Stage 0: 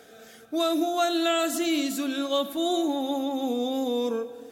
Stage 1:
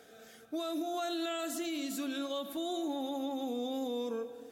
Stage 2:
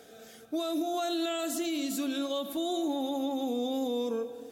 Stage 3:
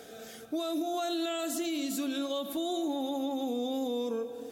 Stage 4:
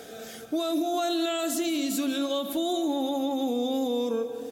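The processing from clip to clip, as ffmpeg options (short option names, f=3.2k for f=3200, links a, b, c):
-af "alimiter=limit=-22dB:level=0:latency=1:release=95,volume=-6dB"
-af "equalizer=f=1.6k:w=1.1:g=-4.5,volume=5dB"
-af "acompressor=threshold=-44dB:ratio=1.5,volume=4.5dB"
-af "aecho=1:1:181:0.15,volume=5dB"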